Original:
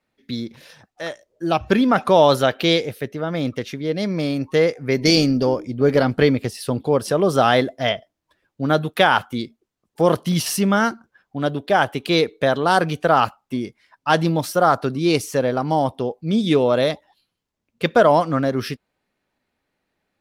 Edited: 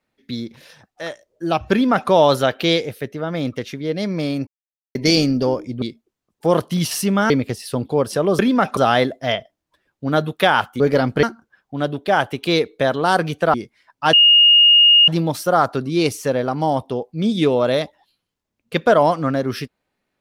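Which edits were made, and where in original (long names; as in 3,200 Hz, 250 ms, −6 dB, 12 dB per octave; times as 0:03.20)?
0:01.72–0:02.10: duplicate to 0:07.34
0:04.47–0:04.95: silence
0:05.82–0:06.25: swap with 0:09.37–0:10.85
0:13.16–0:13.58: remove
0:14.17: insert tone 2,850 Hz −7.5 dBFS 0.95 s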